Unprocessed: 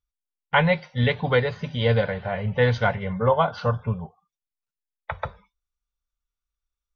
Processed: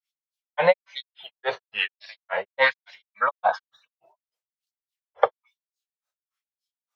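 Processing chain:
auto-filter high-pass sine 1.1 Hz 570–5,000 Hz
granular cloud 170 ms, grains 3.5 per second, spray 10 ms, pitch spread up and down by 3 semitones
level +7.5 dB

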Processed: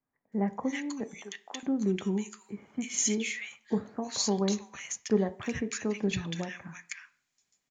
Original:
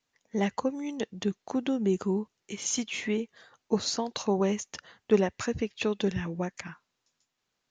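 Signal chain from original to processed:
0:01.14–0:01.63: high-pass filter 700 Hz 12 dB per octave
multiband delay without the direct sound lows, highs 320 ms, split 1,400 Hz
convolution reverb RT60 0.45 s, pre-delay 3 ms, DRR 12 dB

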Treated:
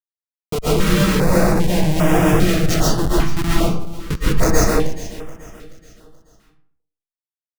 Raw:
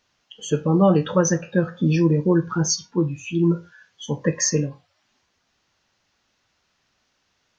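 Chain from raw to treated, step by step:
parametric band 480 Hz +9 dB 0.39 octaves
notch filter 890 Hz, Q 12
comb filter 6.4 ms, depth 57%
in parallel at −10.5 dB: soft clipping −17.5 dBFS, distortion −7 dB
on the sum: multi-voice chorus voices 2, 0.3 Hz, delay 23 ms, depth 2.6 ms
comparator with hysteresis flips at −17 dBFS
on a send: repeating echo 429 ms, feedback 42%, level −16 dB
on the sum: comb and all-pass reverb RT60 0.58 s, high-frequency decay 0.65×, pre-delay 95 ms, DRR −7 dB
notch on a step sequencer 2.5 Hz 530–4,200 Hz
level +1 dB

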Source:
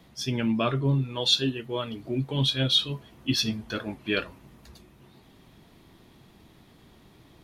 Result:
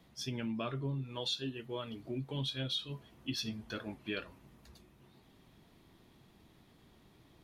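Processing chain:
downward compressor 3 to 1, threshold −27 dBFS, peak gain reduction 8 dB
level −8 dB

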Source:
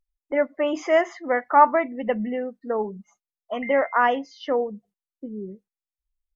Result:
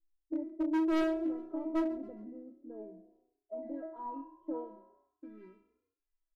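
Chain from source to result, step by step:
gap after every zero crossing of 0.11 ms
high-shelf EQ 3,100 Hz −11 dB
mains-hum notches 50/100/150/200/250/300 Hz
in parallel at +0.5 dB: downward compressor 6 to 1, threshold −31 dBFS, peak gain reduction 19 dB
on the sum: stiff-string resonator 320 Hz, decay 0.63 s, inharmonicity 0.002
low-pass filter sweep 350 Hz → 1,900 Hz, 0:04.35–0:05.39
gain into a clipping stage and back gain 34 dB
on a send: echo with shifted repeats 137 ms, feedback 42%, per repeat +31 Hz, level −20 dB
on the sum: highs frequency-modulated by the lows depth 0.13 ms
level +7 dB

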